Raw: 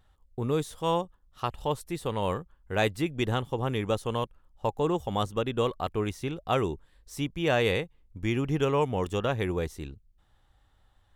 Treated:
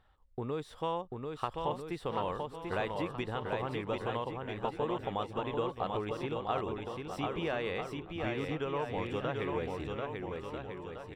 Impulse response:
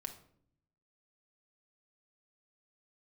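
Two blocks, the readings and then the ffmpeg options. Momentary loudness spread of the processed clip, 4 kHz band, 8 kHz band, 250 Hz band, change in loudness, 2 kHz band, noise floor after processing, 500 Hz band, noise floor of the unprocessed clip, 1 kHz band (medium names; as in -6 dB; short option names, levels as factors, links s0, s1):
5 LU, -8.0 dB, under -10 dB, -7.0 dB, -6.5 dB, -6.0 dB, -54 dBFS, -6.0 dB, -65 dBFS, -4.0 dB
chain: -filter_complex "[0:a]equalizer=f=11000:t=o:w=0.94:g=-5.5,bandreject=f=6500:w=6.4,acompressor=threshold=0.0282:ratio=6,asplit=2[s0][s1];[s1]highpass=f=720:p=1,volume=2.24,asoftclip=type=tanh:threshold=0.447[s2];[s0][s2]amix=inputs=2:normalize=0,lowpass=f=1800:p=1,volume=0.501,asplit=2[s3][s4];[s4]aecho=0:1:740|1295|1711|2023|2258:0.631|0.398|0.251|0.158|0.1[s5];[s3][s5]amix=inputs=2:normalize=0"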